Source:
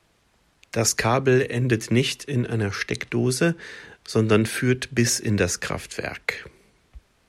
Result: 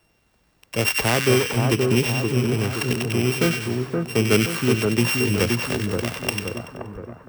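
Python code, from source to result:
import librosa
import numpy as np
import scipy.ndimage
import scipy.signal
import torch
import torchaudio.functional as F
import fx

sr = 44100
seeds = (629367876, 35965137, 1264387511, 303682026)

y = np.r_[np.sort(x[:len(x) // 16 * 16].reshape(-1, 16), axis=1).ravel(), x[len(x) // 16 * 16:]]
y = fx.echo_split(y, sr, split_hz=1400.0, low_ms=523, high_ms=95, feedback_pct=52, wet_db=-3.5)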